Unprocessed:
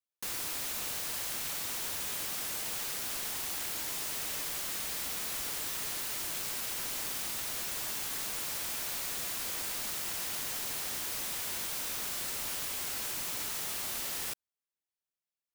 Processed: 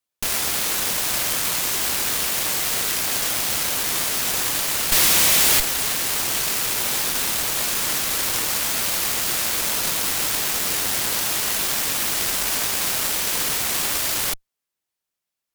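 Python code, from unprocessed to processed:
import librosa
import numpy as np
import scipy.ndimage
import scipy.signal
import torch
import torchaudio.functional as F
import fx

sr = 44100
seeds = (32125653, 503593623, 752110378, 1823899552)

y = fx.high_shelf_res(x, sr, hz=1700.0, db=8.0, q=1.5, at=(4.92, 5.6))
y = fx.cheby_harmonics(y, sr, harmonics=(8,), levels_db=(-6,), full_scale_db=-16.0)
y = y * 10.0 ** (9.0 / 20.0)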